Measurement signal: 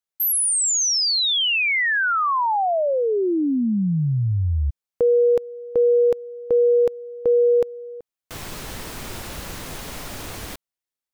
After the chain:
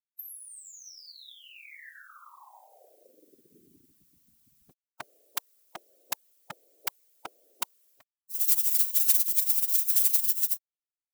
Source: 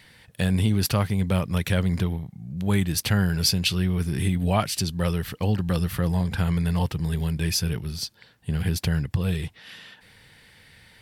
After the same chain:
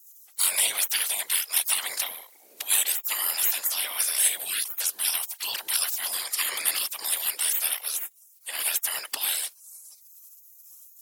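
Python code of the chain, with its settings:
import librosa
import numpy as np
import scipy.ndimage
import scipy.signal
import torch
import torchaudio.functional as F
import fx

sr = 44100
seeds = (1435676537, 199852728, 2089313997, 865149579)

y = fx.spec_gate(x, sr, threshold_db=-30, keep='weak')
y = fx.whisperise(y, sr, seeds[0])
y = fx.riaa(y, sr, side='recording')
y = y * librosa.db_to_amplitude(8.5)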